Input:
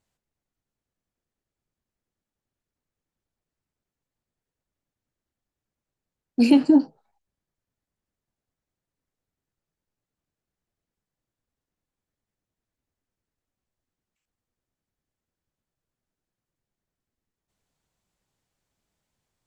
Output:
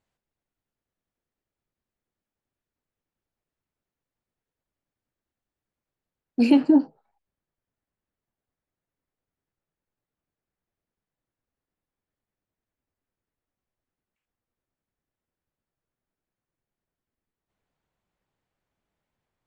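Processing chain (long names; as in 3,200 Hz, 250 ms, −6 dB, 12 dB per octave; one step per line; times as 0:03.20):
bass and treble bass −3 dB, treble −8 dB, from 0:06.60 treble −15 dB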